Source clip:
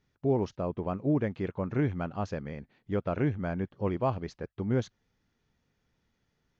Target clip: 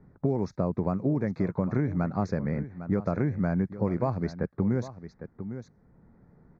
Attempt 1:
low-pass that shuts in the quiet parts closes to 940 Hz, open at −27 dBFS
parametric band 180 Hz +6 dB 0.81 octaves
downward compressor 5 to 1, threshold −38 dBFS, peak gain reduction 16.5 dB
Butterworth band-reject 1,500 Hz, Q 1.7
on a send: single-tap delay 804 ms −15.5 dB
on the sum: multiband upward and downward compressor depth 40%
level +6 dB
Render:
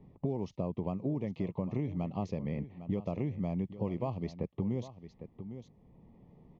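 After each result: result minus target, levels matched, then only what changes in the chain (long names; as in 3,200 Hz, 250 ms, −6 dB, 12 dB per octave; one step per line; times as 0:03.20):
downward compressor: peak gain reduction +7 dB; 2,000 Hz band −6.0 dB
change: downward compressor 5 to 1, threshold −29 dBFS, peak gain reduction 9.5 dB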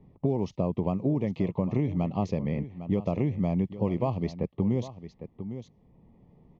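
2,000 Hz band −6.0 dB
change: Butterworth band-reject 3,000 Hz, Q 1.7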